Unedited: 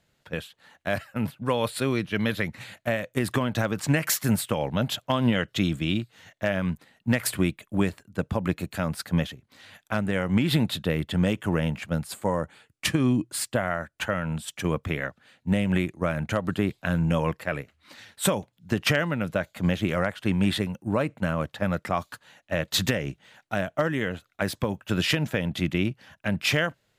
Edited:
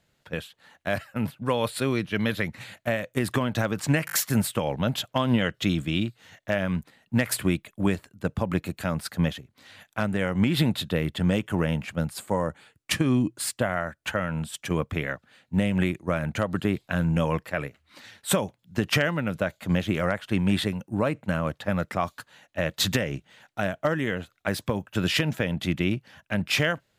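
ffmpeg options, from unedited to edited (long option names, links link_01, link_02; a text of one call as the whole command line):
ffmpeg -i in.wav -filter_complex "[0:a]asplit=4[link_01][link_02][link_03][link_04];[link_01]atrim=end=4.082[link_05];[link_02]atrim=start=4.058:end=4.082[link_06];[link_03]atrim=start=4.058:end=4.082[link_07];[link_04]atrim=start=4.058[link_08];[link_05][link_06]acrossfade=duration=0.004:curve1=hsin:curve2=hsin[link_09];[link_09][link_07]acrossfade=duration=0.004:curve1=hsin:curve2=hsin[link_10];[link_10][link_08]acrossfade=duration=0.004:curve1=hsin:curve2=hsin" out.wav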